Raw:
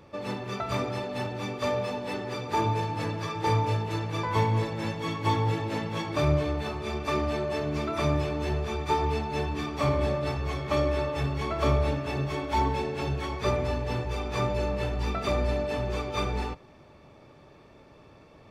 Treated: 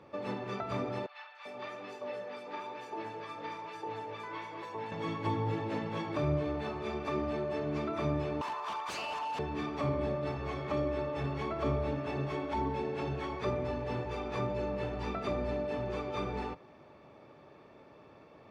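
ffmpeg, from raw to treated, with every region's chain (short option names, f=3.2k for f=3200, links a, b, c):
-filter_complex "[0:a]asettb=1/sr,asplit=3[a][b][c];[a]atrim=end=1.064[d];[b]atrim=start=1.06:end=4.92,asetpts=PTS-STARTPTS,afade=t=in:d=0.004:c=qsin,afade=t=out:st=3.856:d=0.004:c=qsin,acrossover=split=930|5100[e][f][g];[g]adelay=290[h];[e]adelay=390[i];[i][f][h]amix=inputs=3:normalize=0,atrim=end_sample=170226,flanger=delay=2.4:depth=5.2:regen=81:speed=1.1:shape=sinusoidal,highpass=f=560:p=1[j];[c]atrim=start=4.916[k];[d][j]acrossfade=d=0.004:c1=hsin:c2=qsin[l];[l][k]acrossfade=d=0.004:c1=qsin:c2=hsin,asettb=1/sr,asplit=3[m][n][o];[m]atrim=end=8.414[p];[n]atrim=start=8.41:end=9.39,asetpts=PTS-STARTPTS,afade=t=in:d=0.004:c=qsin,afade=t=out:st=0.976:d=0.004:c=qsin,highpass=f=1k:t=q:w=12,highshelf=f=4.3k:g=11,aeval=exprs='0.0596*(abs(mod(val(0)/0.0596+3,4)-2)-1)':c=same[q];[o]atrim=start=9.386[r];[p][q]acrossfade=d=0.004:c1=hsin:c2=qsin[s];[s][r]acrossfade=d=0.004:c1=qsin:c2=hsin,highpass=f=250:p=1,aemphasis=mode=reproduction:type=75kf,acrossover=split=390[t][u];[u]acompressor=threshold=-38dB:ratio=2.5[v];[t][v]amix=inputs=2:normalize=0"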